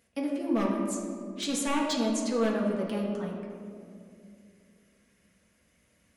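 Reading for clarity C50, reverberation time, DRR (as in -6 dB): 2.5 dB, 2.4 s, -3.0 dB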